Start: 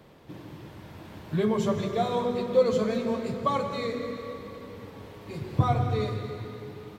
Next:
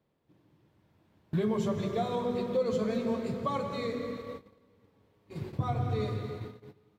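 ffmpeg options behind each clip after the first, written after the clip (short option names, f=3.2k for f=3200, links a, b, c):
-af "agate=range=-20dB:threshold=-37dB:ratio=16:detection=peak,equalizer=f=170:t=o:w=3:g=3,alimiter=limit=-16dB:level=0:latency=1:release=170,volume=-4.5dB"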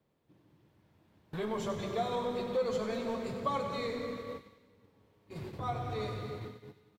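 -filter_complex "[0:a]acrossover=split=480|1300[a][b][c];[a]asoftclip=type=tanh:threshold=-38dB[d];[c]aecho=1:1:96|192|288|384|480|576|672:0.335|0.188|0.105|0.0588|0.0329|0.0184|0.0103[e];[d][b][e]amix=inputs=3:normalize=0"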